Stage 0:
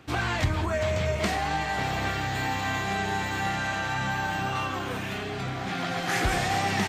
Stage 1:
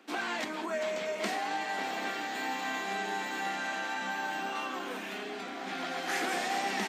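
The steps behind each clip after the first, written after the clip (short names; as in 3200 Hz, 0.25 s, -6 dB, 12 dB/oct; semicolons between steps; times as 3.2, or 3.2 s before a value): steep high-pass 210 Hz 48 dB/oct; notch 1200 Hz, Q 28; gain -5 dB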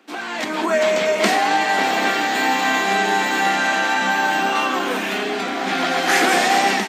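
AGC gain up to 12 dB; gain +4 dB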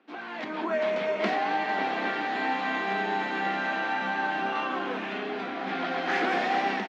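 air absorption 260 m; echo 0.452 s -14 dB; gain -8.5 dB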